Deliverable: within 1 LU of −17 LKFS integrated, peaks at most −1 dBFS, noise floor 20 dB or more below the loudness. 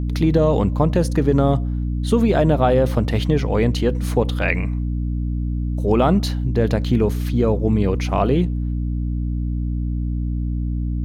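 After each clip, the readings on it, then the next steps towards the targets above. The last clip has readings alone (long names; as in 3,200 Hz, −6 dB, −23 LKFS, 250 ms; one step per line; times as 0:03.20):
mains hum 60 Hz; hum harmonics up to 300 Hz; level of the hum −20 dBFS; integrated loudness −20.0 LKFS; sample peak −2.0 dBFS; target loudness −17.0 LKFS
→ mains-hum notches 60/120/180/240/300 Hz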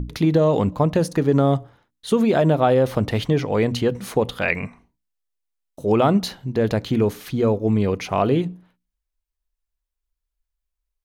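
mains hum none found; integrated loudness −20.5 LKFS; sample peak −3.5 dBFS; target loudness −17.0 LKFS
→ level +3.5 dB
brickwall limiter −1 dBFS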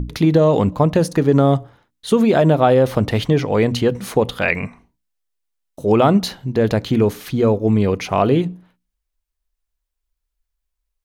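integrated loudness −17.0 LKFS; sample peak −1.0 dBFS; background noise floor −78 dBFS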